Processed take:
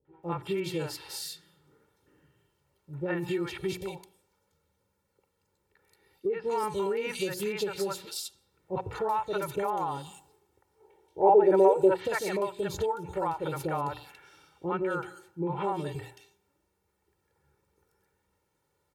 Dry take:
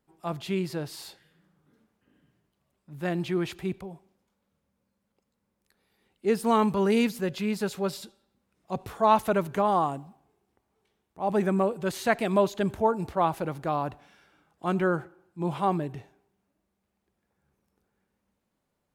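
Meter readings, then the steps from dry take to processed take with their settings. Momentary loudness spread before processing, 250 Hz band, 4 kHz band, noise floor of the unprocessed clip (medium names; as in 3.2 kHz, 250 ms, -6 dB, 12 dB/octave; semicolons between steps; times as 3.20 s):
14 LU, -6.0 dB, 0.0 dB, -79 dBFS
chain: high-pass 62 Hz; hum notches 60/120/180/240/300/360 Hz; comb 2.2 ms, depth 82%; three bands offset in time lows, mids, highs 50/230 ms, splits 570/2900 Hz; compression 6:1, threshold -31 dBFS, peak gain reduction 14.5 dB; time-frequency box 10.80–11.98 s, 320–990 Hz +11 dB; trim +3.5 dB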